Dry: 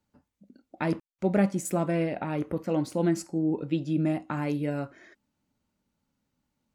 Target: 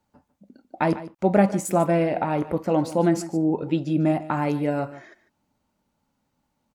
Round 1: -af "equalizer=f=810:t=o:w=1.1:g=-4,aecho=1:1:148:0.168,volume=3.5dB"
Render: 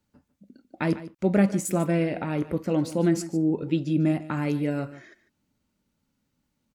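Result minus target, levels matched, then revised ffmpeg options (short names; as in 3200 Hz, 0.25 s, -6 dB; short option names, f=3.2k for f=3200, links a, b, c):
1000 Hz band -7.5 dB
-af "equalizer=f=810:t=o:w=1.1:g=7.5,aecho=1:1:148:0.168,volume=3.5dB"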